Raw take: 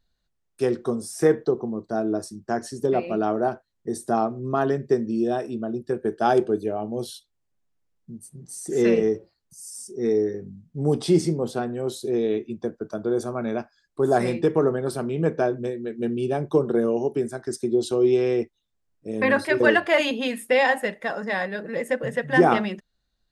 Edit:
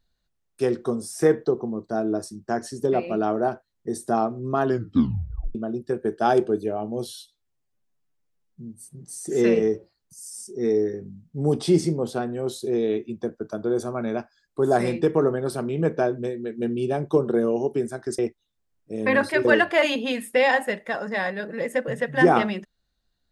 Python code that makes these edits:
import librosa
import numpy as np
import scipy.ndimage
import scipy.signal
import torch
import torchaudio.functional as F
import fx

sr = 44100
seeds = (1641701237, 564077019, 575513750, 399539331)

y = fx.edit(x, sr, fx.tape_stop(start_s=4.66, length_s=0.89),
    fx.stretch_span(start_s=7.08, length_s=1.19, factor=1.5),
    fx.cut(start_s=17.59, length_s=0.75), tone=tone)